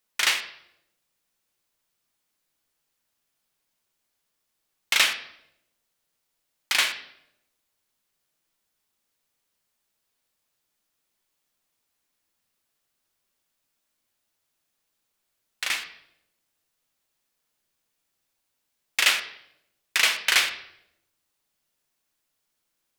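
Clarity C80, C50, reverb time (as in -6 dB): 13.5 dB, 11.0 dB, 0.80 s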